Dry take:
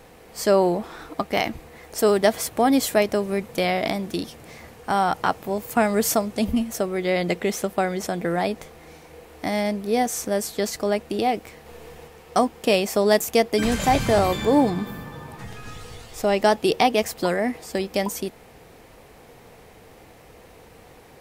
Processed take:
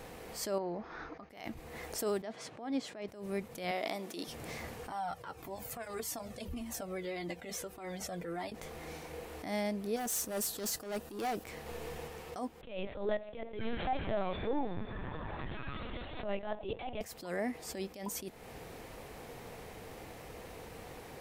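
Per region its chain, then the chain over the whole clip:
0.58–1.30 s: rippled Chebyshev low-pass 6.6 kHz, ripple 6 dB + treble shelf 2.9 kHz -10 dB
2.22–3.08 s: high-pass 120 Hz 24 dB/octave + distance through air 120 m
3.71–4.27 s: high-pass 320 Hz + band-stop 1.6 kHz
4.90–8.52 s: comb of notches 210 Hz + compression 2.5:1, threshold -29 dBFS + Shepard-style flanger falling 1.7 Hz
9.96–11.44 s: treble shelf 8.3 kHz +11 dB + band-stop 2.2 kHz, Q 5.3 + hard clipper -24 dBFS
12.61–17.01 s: band-passed feedback delay 72 ms, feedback 70%, band-pass 570 Hz, level -17 dB + LPC vocoder at 8 kHz pitch kept
whole clip: compression 2.5:1, threshold -37 dBFS; attacks held to a fixed rise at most 100 dB/s

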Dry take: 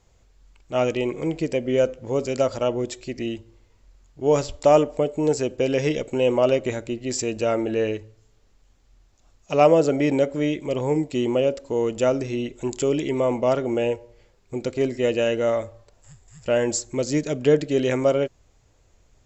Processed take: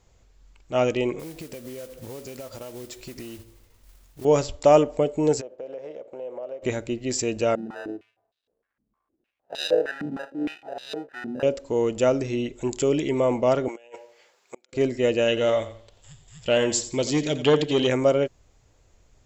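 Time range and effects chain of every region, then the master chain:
1.19–4.25 s: compression 16:1, threshold -34 dBFS + modulation noise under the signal 11 dB
5.40–6.62 s: spectral contrast reduction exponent 0.68 + band-pass filter 560 Hz, Q 4.1 + compression 3:1, threshold -35 dBFS
7.55–11.43 s: sample-rate reducer 1.1 kHz + step-sequenced band-pass 6.5 Hz 210–3800 Hz
13.68–14.73 s: high-pass 720 Hz + compressor with a negative ratio -38 dBFS, ratio -0.5 + inverted gate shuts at -24 dBFS, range -30 dB
15.28–17.87 s: peaking EQ 3.3 kHz +12.5 dB 0.59 oct + feedback delay 88 ms, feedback 29%, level -13 dB + transformer saturation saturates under 580 Hz
whole clip: none

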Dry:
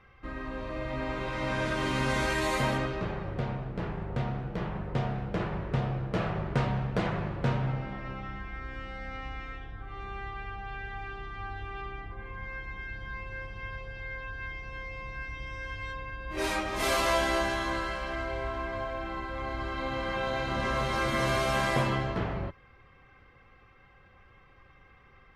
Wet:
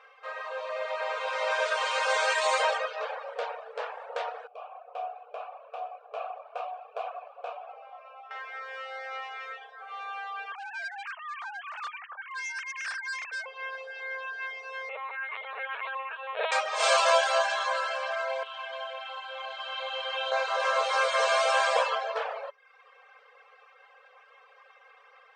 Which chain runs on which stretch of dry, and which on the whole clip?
4.47–8.31 s: vowel filter a + peaking EQ 11 kHz +11.5 dB 1.3 oct
10.52–13.46 s: formants replaced by sine waves + hard clipper -37 dBFS + high-pass 1 kHz
14.89–16.52 s: distance through air 55 m + doubling 38 ms -9 dB + LPC vocoder at 8 kHz pitch kept
18.43–20.32 s: peaking EQ 3.1 kHz +13.5 dB 0.63 oct + feedback comb 130 Hz, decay 1.9 s
whole clip: reverb removal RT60 0.65 s; FFT band-pass 430–9100 Hz; band-stop 2 kHz, Q 10; trim +6.5 dB

